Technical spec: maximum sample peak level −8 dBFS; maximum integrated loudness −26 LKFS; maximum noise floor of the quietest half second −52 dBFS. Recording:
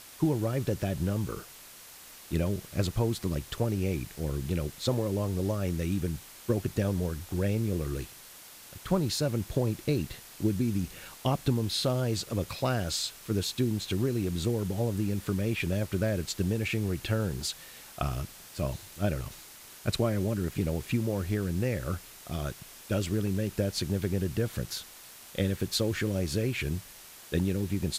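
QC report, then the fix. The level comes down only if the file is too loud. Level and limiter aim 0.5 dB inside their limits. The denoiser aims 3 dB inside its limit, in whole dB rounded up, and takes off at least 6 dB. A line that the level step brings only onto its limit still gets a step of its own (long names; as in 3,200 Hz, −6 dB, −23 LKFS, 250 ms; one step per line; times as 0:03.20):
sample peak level −12.5 dBFS: in spec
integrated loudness −31.0 LKFS: in spec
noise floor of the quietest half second −50 dBFS: out of spec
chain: broadband denoise 6 dB, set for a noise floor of −50 dBFS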